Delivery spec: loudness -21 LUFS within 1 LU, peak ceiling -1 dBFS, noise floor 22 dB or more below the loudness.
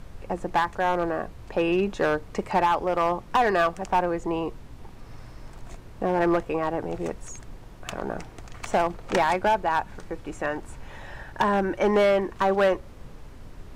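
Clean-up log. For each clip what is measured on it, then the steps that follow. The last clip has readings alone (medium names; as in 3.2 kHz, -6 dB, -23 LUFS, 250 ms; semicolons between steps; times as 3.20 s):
clipped samples 1.4%; clipping level -15.5 dBFS; noise floor -45 dBFS; noise floor target -48 dBFS; loudness -25.5 LUFS; peak level -15.5 dBFS; loudness target -21.0 LUFS
-> clip repair -15.5 dBFS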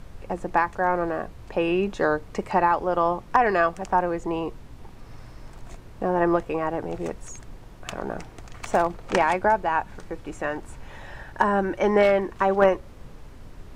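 clipped samples 0.0%; noise floor -45 dBFS; noise floor target -46 dBFS
-> noise print and reduce 6 dB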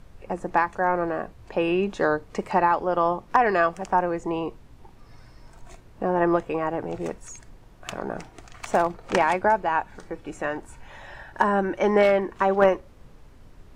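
noise floor -50 dBFS; loudness -24.5 LUFS; peak level -6.5 dBFS; loudness target -21.0 LUFS
-> trim +3.5 dB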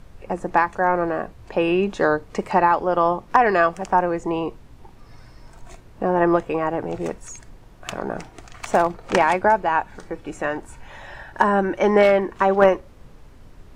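loudness -21.0 LUFS; peak level -3.0 dBFS; noise floor -46 dBFS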